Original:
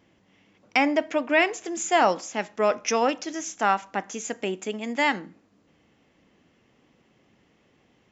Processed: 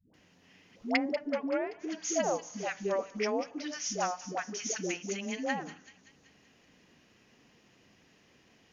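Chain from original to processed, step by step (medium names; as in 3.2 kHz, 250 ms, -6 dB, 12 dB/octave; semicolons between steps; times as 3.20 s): low-pass that closes with the level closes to 620 Hz, closed at -18.5 dBFS; treble shelf 3.1 kHz +11 dB; hum notches 60/120/180 Hz; in parallel at 0 dB: compression, threshold -39 dBFS, peak gain reduction 21 dB; on the sum: phase dispersion highs, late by 131 ms, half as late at 470 Hz; on a send: feedback echo behind a high-pass 177 ms, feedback 57%, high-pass 3.2 kHz, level -8.5 dB; on the sum: tape speed -7%; trim -8 dB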